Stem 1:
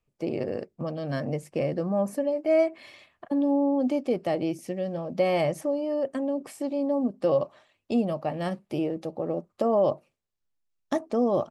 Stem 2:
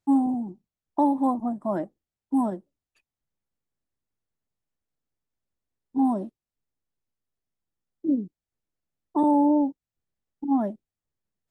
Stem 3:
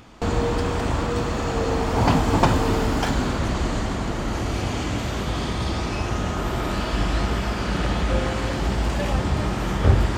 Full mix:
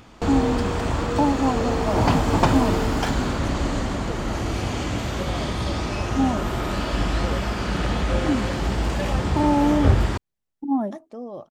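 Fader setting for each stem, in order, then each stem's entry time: -11.5 dB, +0.5 dB, -0.5 dB; 0.00 s, 0.20 s, 0.00 s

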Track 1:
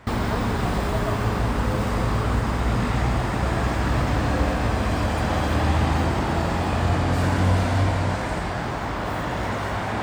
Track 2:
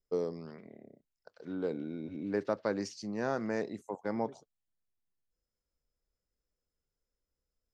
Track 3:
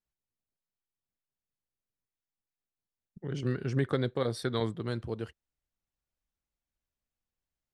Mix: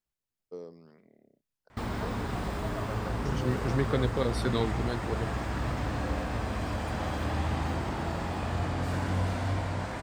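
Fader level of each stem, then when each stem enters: -9.5 dB, -9.5 dB, +1.0 dB; 1.70 s, 0.40 s, 0.00 s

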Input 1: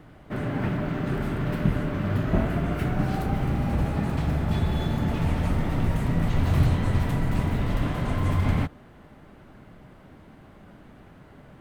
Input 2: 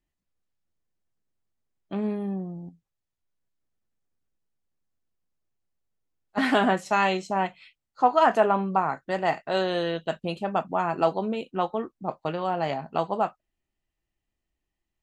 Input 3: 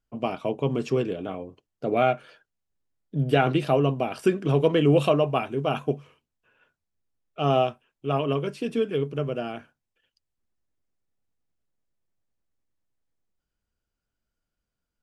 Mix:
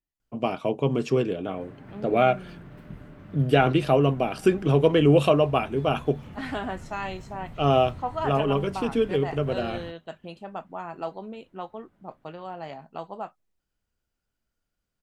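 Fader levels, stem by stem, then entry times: -18.5 dB, -10.0 dB, +1.5 dB; 1.25 s, 0.00 s, 0.20 s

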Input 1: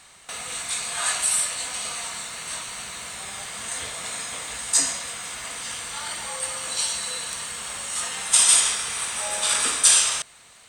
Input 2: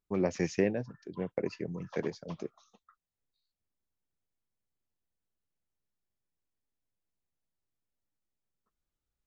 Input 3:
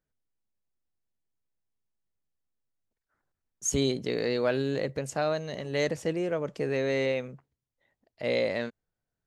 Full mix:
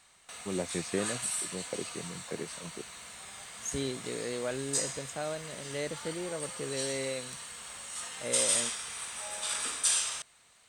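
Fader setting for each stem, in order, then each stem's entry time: -11.5 dB, -4.5 dB, -8.0 dB; 0.00 s, 0.35 s, 0.00 s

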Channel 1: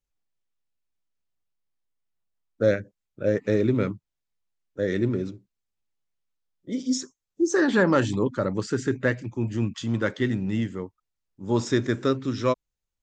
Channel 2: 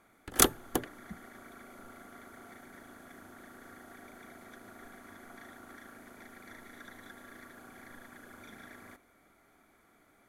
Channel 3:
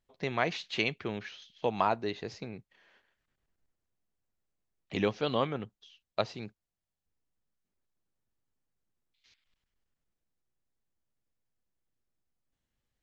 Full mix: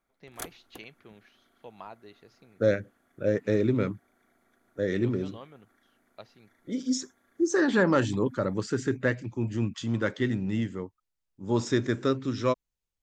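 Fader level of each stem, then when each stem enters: -2.5 dB, -17.0 dB, -16.5 dB; 0.00 s, 0.00 s, 0.00 s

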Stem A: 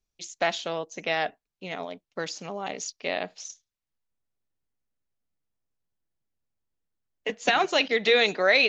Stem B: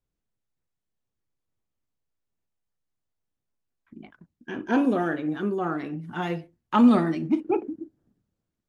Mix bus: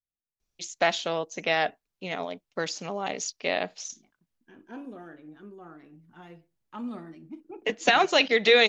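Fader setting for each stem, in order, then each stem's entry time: +2.0 dB, -19.0 dB; 0.40 s, 0.00 s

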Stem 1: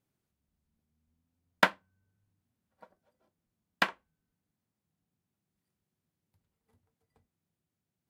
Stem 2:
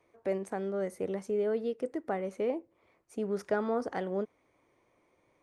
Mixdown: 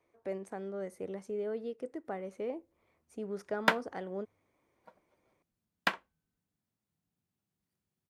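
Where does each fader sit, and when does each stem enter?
-2.5 dB, -6.0 dB; 2.05 s, 0.00 s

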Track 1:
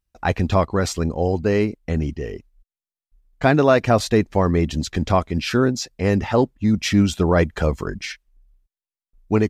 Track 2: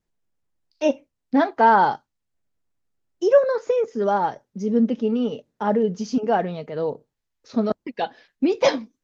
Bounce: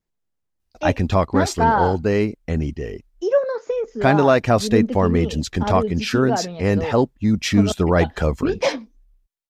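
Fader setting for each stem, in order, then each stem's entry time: 0.0 dB, -2.5 dB; 0.60 s, 0.00 s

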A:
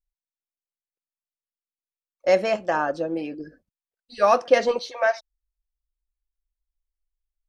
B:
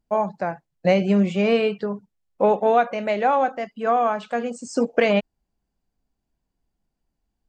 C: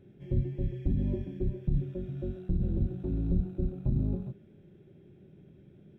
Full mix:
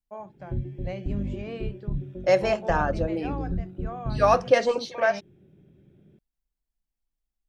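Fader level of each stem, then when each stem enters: -1.5 dB, -18.0 dB, -1.5 dB; 0.00 s, 0.00 s, 0.20 s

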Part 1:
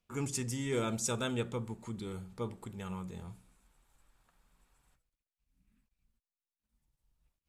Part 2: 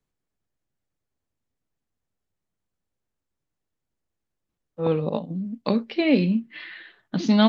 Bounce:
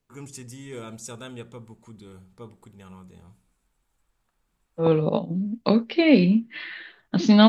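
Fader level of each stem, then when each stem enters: -4.5 dB, +3.0 dB; 0.00 s, 0.00 s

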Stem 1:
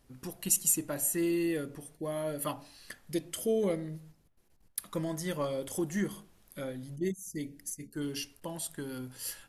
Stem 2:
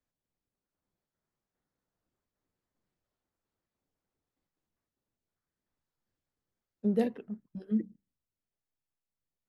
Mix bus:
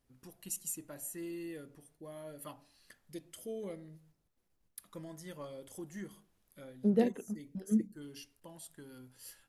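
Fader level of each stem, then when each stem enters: -12.5 dB, 0.0 dB; 0.00 s, 0.00 s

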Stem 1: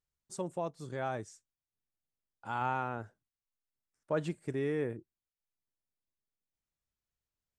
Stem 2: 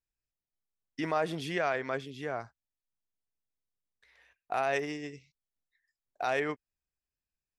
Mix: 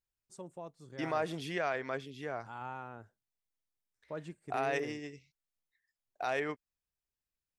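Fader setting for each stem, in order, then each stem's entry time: -9.5 dB, -3.5 dB; 0.00 s, 0.00 s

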